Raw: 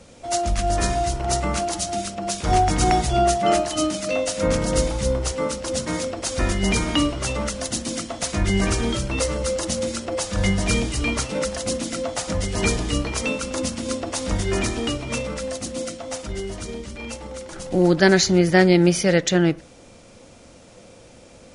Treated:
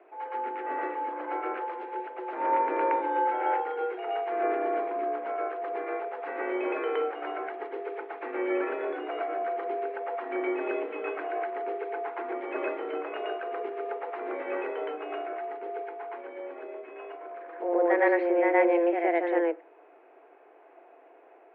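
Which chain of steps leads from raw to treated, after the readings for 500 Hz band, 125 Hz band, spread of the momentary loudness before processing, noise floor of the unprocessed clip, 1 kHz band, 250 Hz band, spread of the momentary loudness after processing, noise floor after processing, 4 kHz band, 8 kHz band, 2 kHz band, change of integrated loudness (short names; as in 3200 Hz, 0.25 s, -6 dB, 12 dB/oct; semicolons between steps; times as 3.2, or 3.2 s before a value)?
-5.0 dB, under -40 dB, 12 LU, -47 dBFS, -3.5 dB, -11.5 dB, 12 LU, -56 dBFS, -25.0 dB, under -40 dB, -7.5 dB, -8.0 dB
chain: reverse echo 0.117 s -3.5 dB; mistuned SSB +170 Hz 150–2100 Hz; gain -8 dB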